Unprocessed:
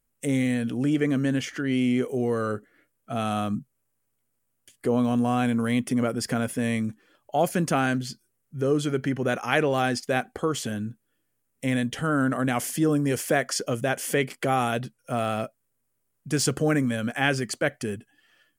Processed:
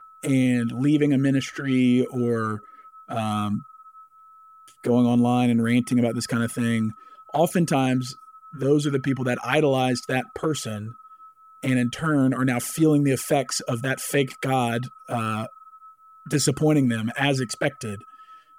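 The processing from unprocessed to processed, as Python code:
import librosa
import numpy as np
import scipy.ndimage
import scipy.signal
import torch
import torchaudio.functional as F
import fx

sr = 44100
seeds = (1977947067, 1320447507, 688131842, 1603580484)

y = x + 10.0 ** (-46.0 / 20.0) * np.sin(2.0 * np.pi * 1300.0 * np.arange(len(x)) / sr)
y = fx.env_flanger(y, sr, rest_ms=7.6, full_db=-19.0)
y = y * librosa.db_to_amplitude(4.5)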